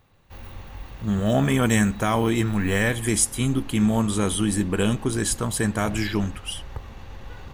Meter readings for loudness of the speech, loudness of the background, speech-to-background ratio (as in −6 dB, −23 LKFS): −23.0 LKFS, −41.5 LKFS, 18.5 dB